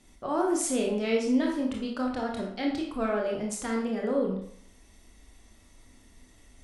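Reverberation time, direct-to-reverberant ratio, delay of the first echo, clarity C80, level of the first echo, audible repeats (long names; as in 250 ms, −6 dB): 0.65 s, −1.0 dB, no echo audible, 7.5 dB, no echo audible, no echo audible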